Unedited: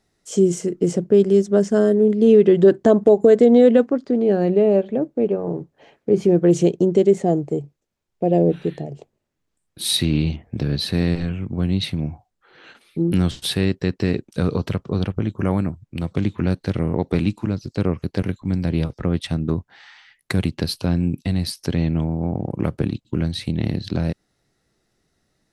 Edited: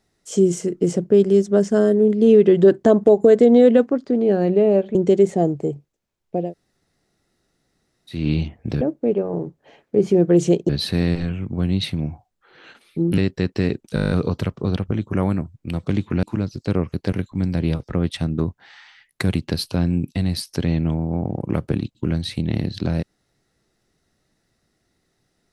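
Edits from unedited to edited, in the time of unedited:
0:04.95–0:06.83: move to 0:10.69
0:08.30–0:10.07: fill with room tone, crossfade 0.24 s
0:13.18–0:13.62: remove
0:14.39: stutter 0.02 s, 9 plays
0:16.51–0:17.33: remove

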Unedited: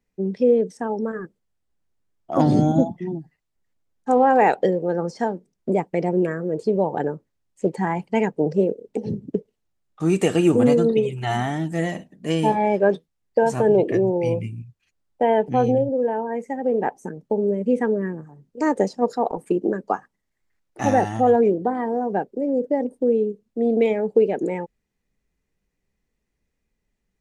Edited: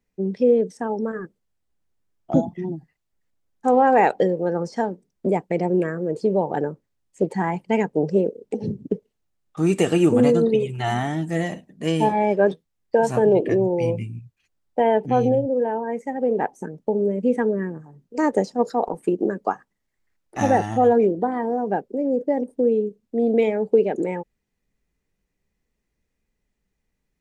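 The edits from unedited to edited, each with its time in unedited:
0:02.34–0:02.77: remove

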